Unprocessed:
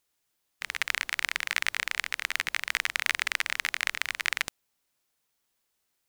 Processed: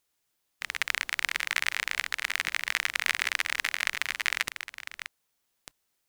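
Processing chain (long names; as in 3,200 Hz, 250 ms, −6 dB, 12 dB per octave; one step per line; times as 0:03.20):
delay that plays each chunk backwards 635 ms, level −10 dB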